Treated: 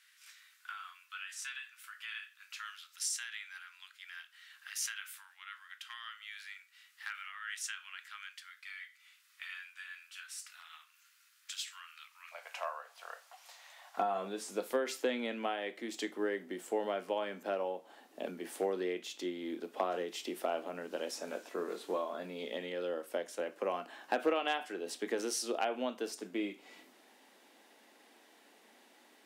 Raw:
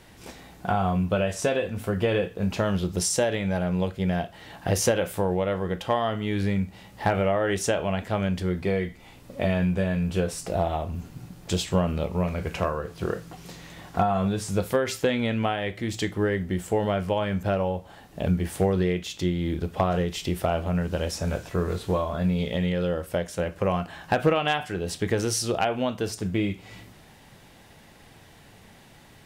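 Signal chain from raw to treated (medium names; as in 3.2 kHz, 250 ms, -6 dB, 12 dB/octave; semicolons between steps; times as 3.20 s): steep high-pass 1.3 kHz 48 dB/octave, from 12.31 s 630 Hz, from 13.97 s 240 Hz; trim -9 dB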